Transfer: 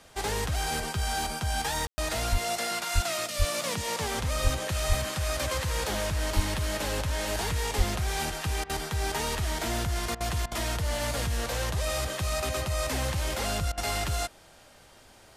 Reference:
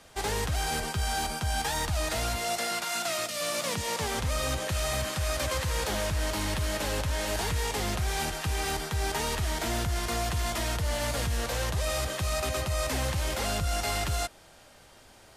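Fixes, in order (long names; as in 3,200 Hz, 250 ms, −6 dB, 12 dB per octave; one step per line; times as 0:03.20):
high-pass at the plosives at 0:02.31/0:02.94/0:03.38/0:04.43/0:04.88/0:06.35/0:07.77
ambience match 0:01.87–0:01.98
repair the gap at 0:08.64/0:10.15/0:10.46/0:13.72, 54 ms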